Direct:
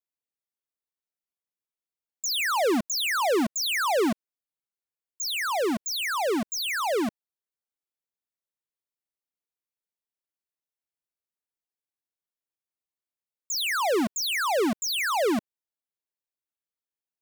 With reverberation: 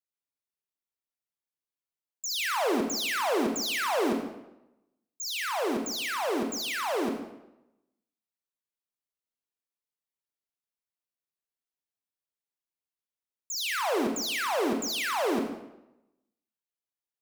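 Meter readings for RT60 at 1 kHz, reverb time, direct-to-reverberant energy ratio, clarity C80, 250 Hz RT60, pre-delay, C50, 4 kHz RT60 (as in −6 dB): 0.90 s, 0.90 s, 3.0 dB, 7.0 dB, 0.90 s, 36 ms, 4.5 dB, 0.70 s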